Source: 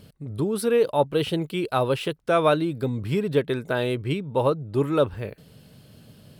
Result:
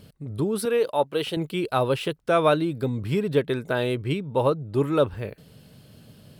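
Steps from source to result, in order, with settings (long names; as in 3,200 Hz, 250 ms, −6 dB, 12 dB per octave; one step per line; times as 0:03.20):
0:00.65–0:01.37: high-pass filter 400 Hz 6 dB per octave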